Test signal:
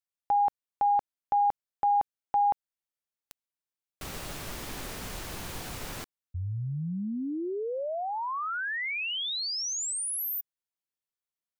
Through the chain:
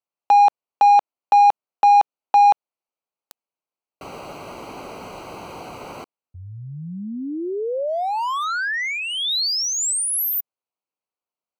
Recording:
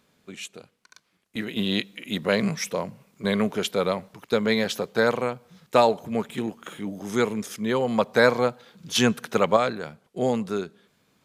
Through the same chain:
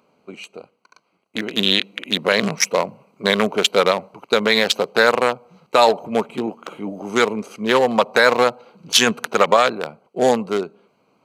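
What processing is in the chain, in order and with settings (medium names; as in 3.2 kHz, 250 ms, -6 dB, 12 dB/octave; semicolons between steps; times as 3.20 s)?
local Wiener filter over 25 samples; high-pass 1.1 kHz 6 dB/octave; loudness maximiser +18 dB; trim -1 dB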